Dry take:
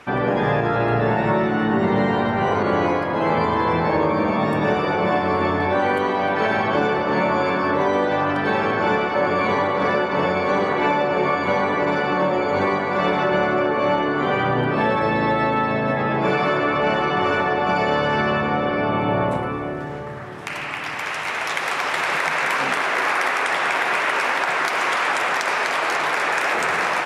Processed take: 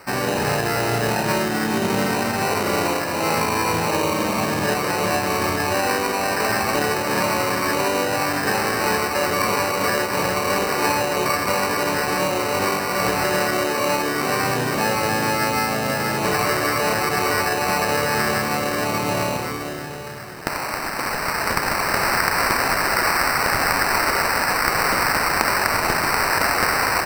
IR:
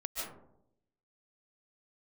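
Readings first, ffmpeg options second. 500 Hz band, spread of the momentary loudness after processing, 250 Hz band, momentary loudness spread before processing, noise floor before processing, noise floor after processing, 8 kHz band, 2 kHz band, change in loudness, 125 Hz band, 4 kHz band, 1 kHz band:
−2.0 dB, 4 LU, −2.5 dB, 2 LU, −28 dBFS, −27 dBFS, can't be measured, +0.5 dB, 0.0 dB, −1.5 dB, +5.0 dB, −0.5 dB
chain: -af "crystalizer=i=5:c=0,acrusher=samples=13:mix=1:aa=0.000001,volume=-3dB"

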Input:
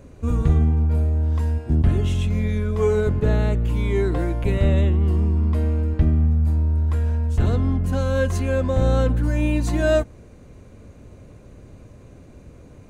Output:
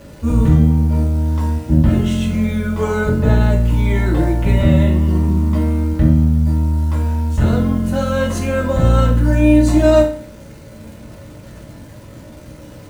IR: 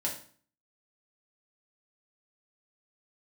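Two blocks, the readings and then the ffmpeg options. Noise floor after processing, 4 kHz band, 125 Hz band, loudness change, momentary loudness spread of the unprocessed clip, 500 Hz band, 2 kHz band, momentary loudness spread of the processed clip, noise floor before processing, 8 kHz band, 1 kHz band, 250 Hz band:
−38 dBFS, +6.5 dB, +4.5 dB, +5.5 dB, 4 LU, +4.5 dB, +6.0 dB, 7 LU, −46 dBFS, can't be measured, +7.5 dB, +9.5 dB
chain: -filter_complex "[0:a]acontrast=64,equalizer=frequency=1300:width=7.7:gain=5,acrusher=bits=8:dc=4:mix=0:aa=0.000001[link_01];[1:a]atrim=start_sample=2205[link_02];[link_01][link_02]afir=irnorm=-1:irlink=0,volume=-3dB"

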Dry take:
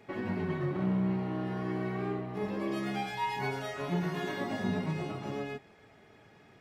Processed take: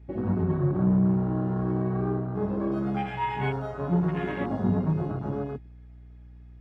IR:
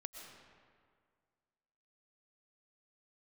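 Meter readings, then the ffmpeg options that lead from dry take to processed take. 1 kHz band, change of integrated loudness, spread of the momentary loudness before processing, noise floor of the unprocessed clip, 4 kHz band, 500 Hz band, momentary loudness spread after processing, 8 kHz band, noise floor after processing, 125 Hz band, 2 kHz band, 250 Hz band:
+3.5 dB, +6.5 dB, 6 LU, −59 dBFS, −5.0 dB, +5.0 dB, 8 LU, below −10 dB, −47 dBFS, +9.0 dB, −0.5 dB, +7.0 dB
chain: -af "highshelf=frequency=7200:gain=-5,afwtdn=0.0126,aeval=exprs='val(0)+0.00126*(sin(2*PI*60*n/s)+sin(2*PI*2*60*n/s)/2+sin(2*PI*3*60*n/s)/3+sin(2*PI*4*60*n/s)/4+sin(2*PI*5*60*n/s)/5)':channel_layout=same,equalizer=frequency=74:width_type=o:width=2.1:gain=10,volume=4dB"

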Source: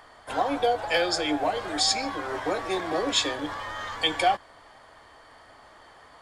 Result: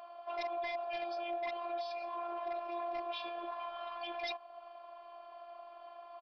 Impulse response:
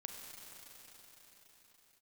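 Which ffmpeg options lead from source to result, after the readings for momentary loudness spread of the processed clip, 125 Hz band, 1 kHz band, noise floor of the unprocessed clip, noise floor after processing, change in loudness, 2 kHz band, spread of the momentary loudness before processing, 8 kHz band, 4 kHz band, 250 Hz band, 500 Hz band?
14 LU, below −30 dB, −11.0 dB, −53 dBFS, −54 dBFS, −13.5 dB, −15.0 dB, 9 LU, below −35 dB, −20.0 dB, −19.5 dB, −10.5 dB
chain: -filter_complex "[0:a]asplit=3[link_01][link_02][link_03];[link_01]bandpass=frequency=730:width_type=q:width=8,volume=0dB[link_04];[link_02]bandpass=frequency=1090:width_type=q:width=8,volume=-6dB[link_05];[link_03]bandpass=frequency=2440:width_type=q:width=8,volume=-9dB[link_06];[link_04][link_05][link_06]amix=inputs=3:normalize=0,asubboost=boost=6.5:cutoff=53,aresample=11025,aeval=exprs='0.0355*(abs(mod(val(0)/0.0355+3,4)-2)-1)':channel_layout=same,aresample=44100,alimiter=level_in=13.5dB:limit=-24dB:level=0:latency=1:release=32,volume=-13.5dB,asplit=2[link_07][link_08];[link_08]acompressor=threshold=-57dB:ratio=6,volume=0dB[link_09];[link_07][link_09]amix=inputs=2:normalize=0,afftfilt=real='hypot(re,im)*cos(PI*b)':imag='0':win_size=512:overlap=0.75,volume=6dB"

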